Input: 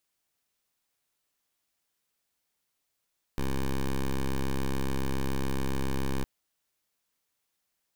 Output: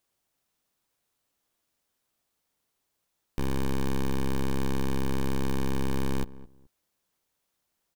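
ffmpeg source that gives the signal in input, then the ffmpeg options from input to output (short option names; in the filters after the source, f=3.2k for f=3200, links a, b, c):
-f lavfi -i "aevalsrc='0.0398*(2*lt(mod(67.1*t,1),0.1)-1)':d=2.86:s=44100"
-filter_complex "[0:a]asplit=2[a][b];[b]acrusher=samples=17:mix=1:aa=0.000001,volume=-10dB[c];[a][c]amix=inputs=2:normalize=0,asplit=2[d][e];[e]adelay=213,lowpass=f=1k:p=1,volume=-17dB,asplit=2[f][g];[g]adelay=213,lowpass=f=1k:p=1,volume=0.24[h];[d][f][h]amix=inputs=3:normalize=0"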